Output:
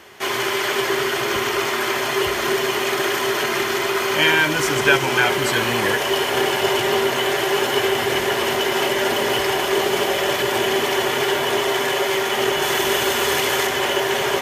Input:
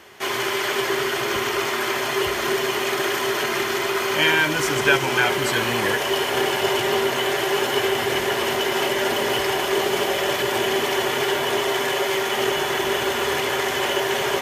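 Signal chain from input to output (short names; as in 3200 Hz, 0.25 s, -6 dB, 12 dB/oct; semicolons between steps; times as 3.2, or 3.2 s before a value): 12.62–13.67 high shelf 3900 Hz +6.5 dB; gain +2 dB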